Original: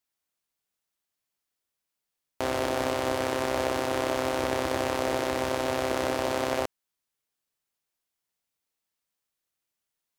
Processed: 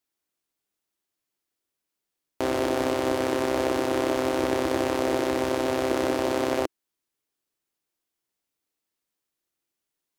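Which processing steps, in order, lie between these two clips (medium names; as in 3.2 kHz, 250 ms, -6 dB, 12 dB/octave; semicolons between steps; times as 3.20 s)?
peaking EQ 330 Hz +8.5 dB 0.76 oct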